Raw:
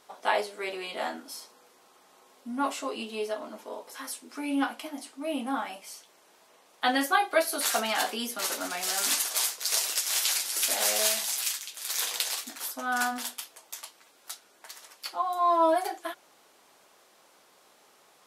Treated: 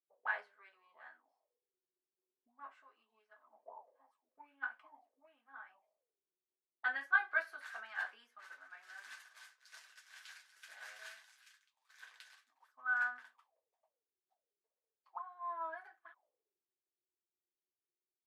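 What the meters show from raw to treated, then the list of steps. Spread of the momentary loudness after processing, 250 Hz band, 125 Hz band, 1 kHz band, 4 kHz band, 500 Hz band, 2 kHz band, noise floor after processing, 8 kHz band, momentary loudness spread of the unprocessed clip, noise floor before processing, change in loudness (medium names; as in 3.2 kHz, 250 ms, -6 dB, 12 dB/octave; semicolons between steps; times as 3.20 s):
24 LU, under -35 dB, no reading, -17.0 dB, -29.0 dB, -25.5 dB, -5.0 dB, under -85 dBFS, -37.5 dB, 18 LU, -61 dBFS, -11.5 dB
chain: dynamic bell 330 Hz, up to -4 dB, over -40 dBFS, Q 0.79; band-stop 1.4 kHz, Q 5.4; auto-wah 330–1500 Hz, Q 9.8, up, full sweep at -32 dBFS; three bands expanded up and down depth 100%; trim -4 dB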